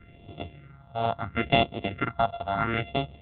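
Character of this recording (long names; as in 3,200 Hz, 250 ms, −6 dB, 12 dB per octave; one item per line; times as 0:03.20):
a buzz of ramps at a fixed pitch in blocks of 64 samples
phaser sweep stages 4, 0.74 Hz, lowest notch 320–1,600 Hz
mu-law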